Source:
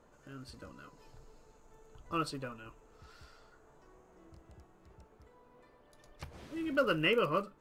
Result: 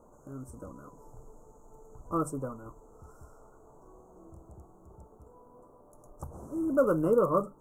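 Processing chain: inverse Chebyshev band-stop 1.8–4.7 kHz, stop band 40 dB; hum notches 50/100/150 Hz; trim +6.5 dB

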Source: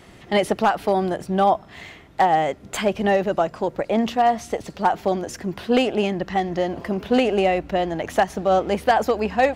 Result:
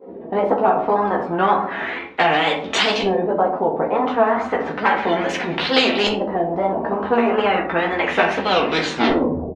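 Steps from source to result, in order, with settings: tape stop on the ending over 1.05 s; expander -42 dBFS; high-pass 260 Hz 12 dB/octave; comb 4.1 ms, depth 59%; small resonant body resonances 390/880/3900 Hz, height 9 dB; LFO low-pass saw up 0.33 Hz 450–4400 Hz; chorus voices 6, 0.79 Hz, delay 14 ms, depth 2.4 ms; wow and flutter 150 cents; on a send at -3.5 dB: reverberation RT60 0.40 s, pre-delay 6 ms; on the sum: spectrum-flattening compressor 2:1; trim -3 dB

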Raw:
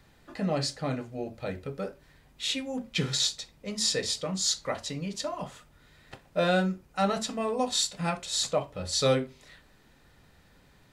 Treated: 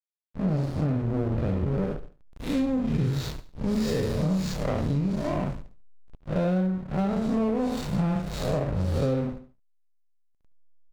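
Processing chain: spectral blur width 175 ms; tilt EQ -3.5 dB/octave; doubling 27 ms -12.5 dB; level rider gain up to 16.5 dB; dynamic bell 3.1 kHz, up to -7 dB, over -47 dBFS, Q 4.8; bucket-brigade echo 113 ms, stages 4096, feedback 35%, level -20 dB; hysteresis with a dead band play -17 dBFS; on a send: feedback delay 71 ms, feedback 36%, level -17 dB; on the sum: compression 10:1, threshold -18 dBFS, peak gain reduction 13 dB; trim -4 dB

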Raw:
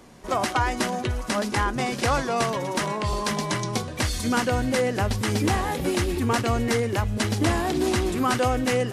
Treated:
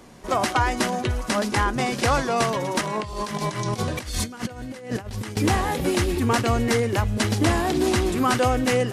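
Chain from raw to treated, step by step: 2.81–5.37 s: compressor with a negative ratio -30 dBFS, ratio -0.5; trim +2 dB

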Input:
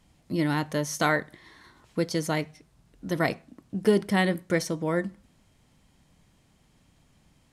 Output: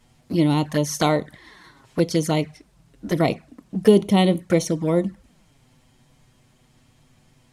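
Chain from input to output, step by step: touch-sensitive flanger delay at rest 8.5 ms, full sweep at -23 dBFS; trim +8 dB

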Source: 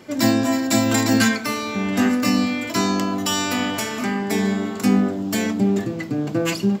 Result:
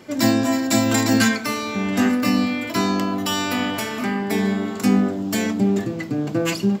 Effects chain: 2.11–4.68 s: peaking EQ 6.7 kHz -6 dB 0.73 oct

